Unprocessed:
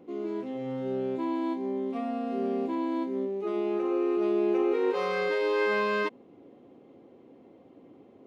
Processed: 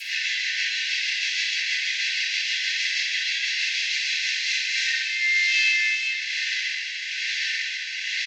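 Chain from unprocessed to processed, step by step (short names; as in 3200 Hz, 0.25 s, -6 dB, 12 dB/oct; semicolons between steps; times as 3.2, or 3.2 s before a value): delta modulation 32 kbps, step -30.5 dBFS; Chebyshev high-pass 1800 Hz, order 10; high shelf 2400 Hz -2 dB; comb 1.5 ms, depth 32%; compressor 2.5:1, threshold -42 dBFS, peak gain reduction 6.5 dB; rotary speaker horn 6.3 Hz, later 1.1 Hz, at 4.05; hard clip -34 dBFS, distortion -51 dB; harmoniser -3 st -9 dB; shoebox room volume 380 m³, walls mixed, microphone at 8 m; gain +7 dB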